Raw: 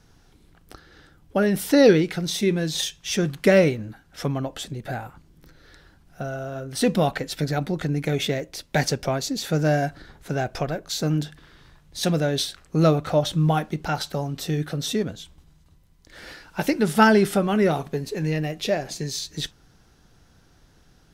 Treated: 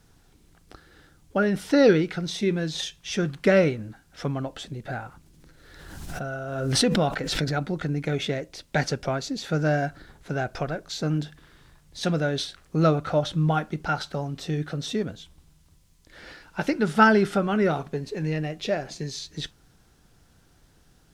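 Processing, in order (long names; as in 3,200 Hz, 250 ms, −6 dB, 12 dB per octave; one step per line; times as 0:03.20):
dynamic equaliser 1,400 Hz, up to +7 dB, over −47 dBFS, Q 5.3
background noise violet −53 dBFS
high-frequency loss of the air 65 metres
0:05.05–0:07.58: background raised ahead of every attack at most 37 dB per second
level −2.5 dB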